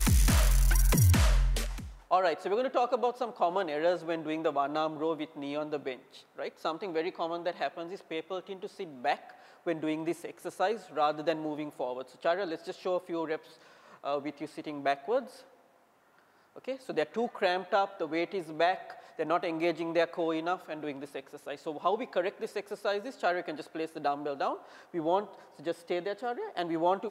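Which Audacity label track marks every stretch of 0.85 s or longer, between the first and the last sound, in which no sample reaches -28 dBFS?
15.190000	16.680000	silence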